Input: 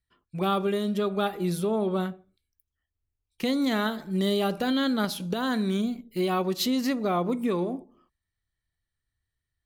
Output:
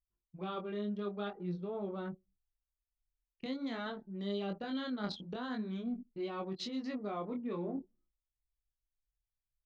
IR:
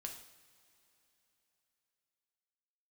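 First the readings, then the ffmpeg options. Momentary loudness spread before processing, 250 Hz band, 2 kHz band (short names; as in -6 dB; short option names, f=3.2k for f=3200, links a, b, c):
5 LU, -12.0 dB, -13.0 dB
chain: -af "lowpass=f=5.8k:w=0.5412,lowpass=f=5.8k:w=1.3066,anlmdn=10,areverse,acompressor=threshold=-39dB:ratio=4,areverse,flanger=delay=19.5:depth=5.3:speed=0.48,volume=3dB"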